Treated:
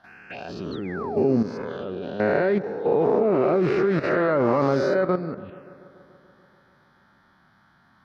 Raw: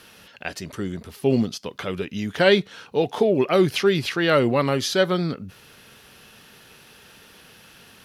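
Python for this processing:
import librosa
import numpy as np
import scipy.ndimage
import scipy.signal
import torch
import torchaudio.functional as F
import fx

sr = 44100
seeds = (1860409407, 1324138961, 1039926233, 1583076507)

y = fx.spec_swells(x, sr, rise_s=1.29)
y = fx.low_shelf(y, sr, hz=110.0, db=-10.0)
y = fx.level_steps(y, sr, step_db=11)
y = fx.spec_paint(y, sr, seeds[0], shape='fall', start_s=0.71, length_s=0.67, low_hz=240.0, high_hz=4500.0, level_db=-35.0)
y = fx.env_phaser(y, sr, low_hz=410.0, high_hz=3200.0, full_db=-27.0)
y = fx.air_absorb(y, sr, metres=350.0)
y = fx.echo_bbd(y, sr, ms=144, stages=2048, feedback_pct=73, wet_db=-19)
y = fx.doppler_dist(y, sr, depth_ms=0.15, at=(2.44, 4.76))
y = F.gain(torch.from_numpy(y), 3.5).numpy()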